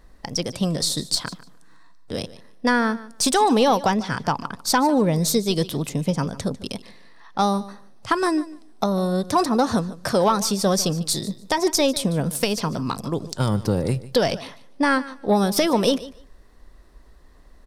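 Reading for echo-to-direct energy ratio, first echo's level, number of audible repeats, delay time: −17.5 dB, −17.5 dB, 2, 148 ms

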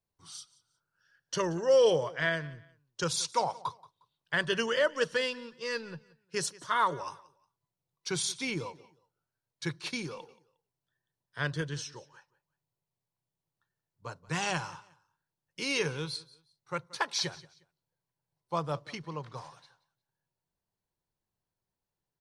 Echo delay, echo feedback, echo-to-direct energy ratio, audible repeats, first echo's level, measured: 179 ms, 27%, −20.5 dB, 2, −21.0 dB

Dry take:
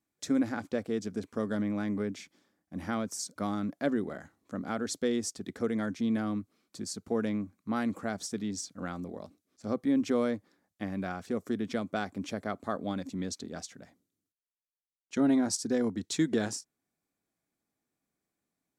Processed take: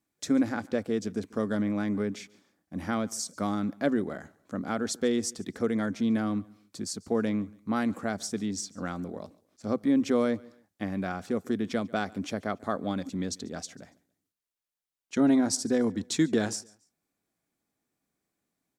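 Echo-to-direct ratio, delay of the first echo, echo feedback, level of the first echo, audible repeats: −23.5 dB, 142 ms, 33%, −24.0 dB, 2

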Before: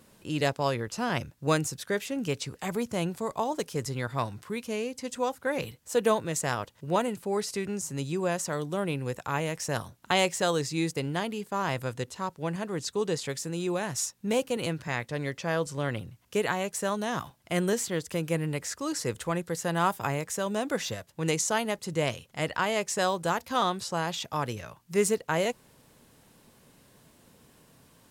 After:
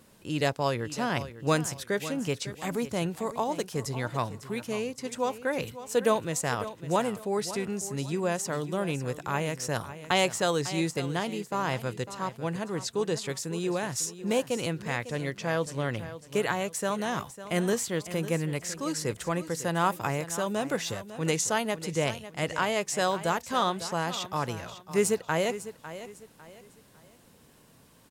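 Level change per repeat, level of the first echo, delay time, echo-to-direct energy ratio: −10.0 dB, −13.5 dB, 551 ms, −13.0 dB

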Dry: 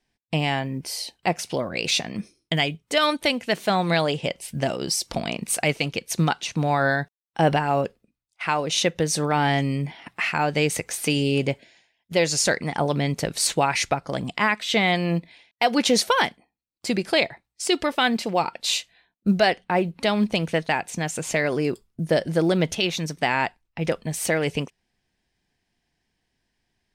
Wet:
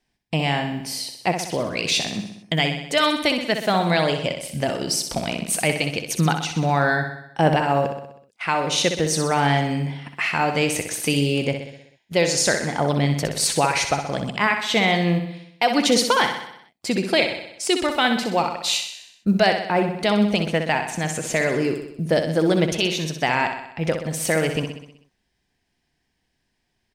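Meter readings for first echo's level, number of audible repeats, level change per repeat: −7.5 dB, 6, −4.5 dB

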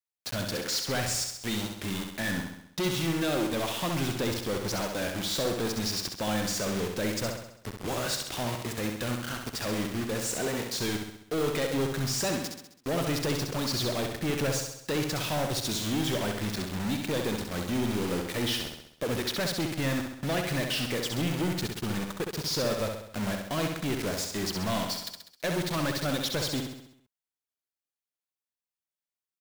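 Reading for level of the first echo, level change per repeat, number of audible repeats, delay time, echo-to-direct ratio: −5.0 dB, −5.5 dB, 6, 66 ms, −3.5 dB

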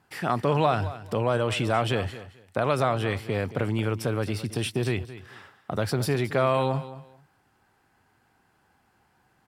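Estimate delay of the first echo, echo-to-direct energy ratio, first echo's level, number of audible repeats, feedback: 220 ms, −15.0 dB, −15.0 dB, 2, 21%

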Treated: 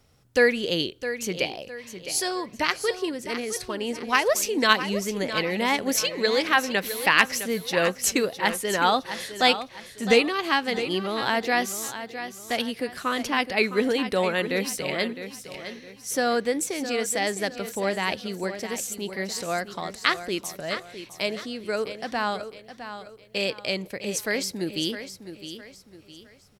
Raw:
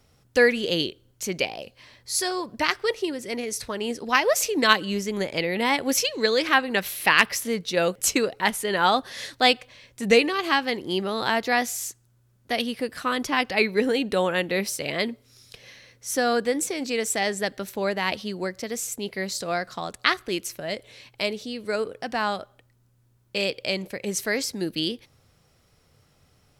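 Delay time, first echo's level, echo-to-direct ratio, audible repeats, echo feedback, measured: 660 ms, −11.0 dB, −10.5 dB, 3, 36%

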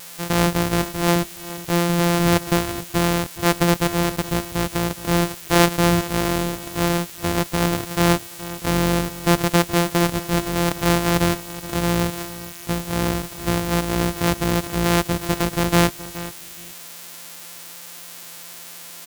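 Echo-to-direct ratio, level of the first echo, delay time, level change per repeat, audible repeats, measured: −15.5 dB, −15.5 dB, 421 ms, −14.0 dB, 2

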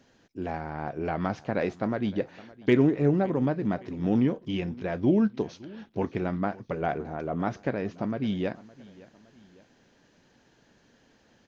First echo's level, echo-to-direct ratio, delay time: −21.0 dB, −20.0 dB, 564 ms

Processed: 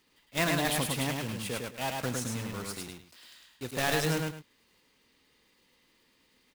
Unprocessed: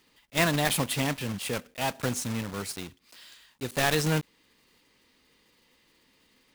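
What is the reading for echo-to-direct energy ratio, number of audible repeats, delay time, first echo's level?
−2.5 dB, 2, 105 ms, −3.0 dB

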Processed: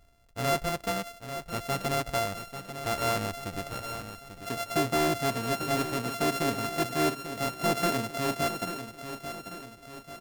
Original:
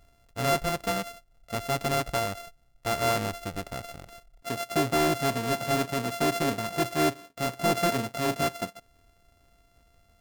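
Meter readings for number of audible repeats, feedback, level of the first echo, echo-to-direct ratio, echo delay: 5, 49%, −10.0 dB, −9.0 dB, 841 ms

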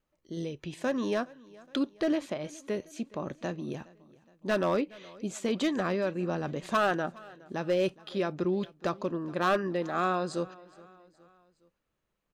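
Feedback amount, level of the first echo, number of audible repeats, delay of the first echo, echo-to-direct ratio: 50%, −22.5 dB, 3, 417 ms, −21.5 dB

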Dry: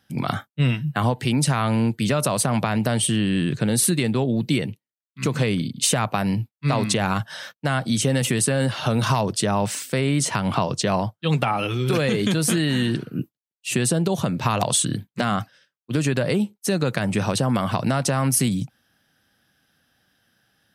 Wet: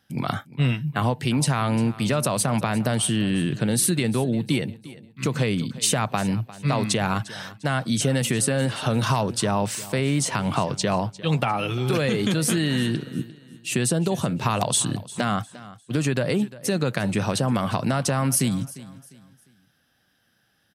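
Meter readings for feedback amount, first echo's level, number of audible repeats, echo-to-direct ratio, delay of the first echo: 33%, −18.0 dB, 2, −17.5 dB, 351 ms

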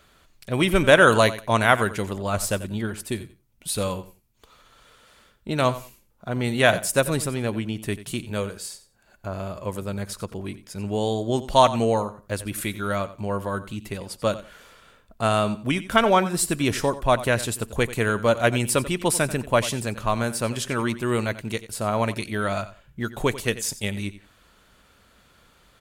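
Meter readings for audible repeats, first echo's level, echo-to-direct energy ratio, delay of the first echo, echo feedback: 2, −15.5 dB, −15.5 dB, 90 ms, 21%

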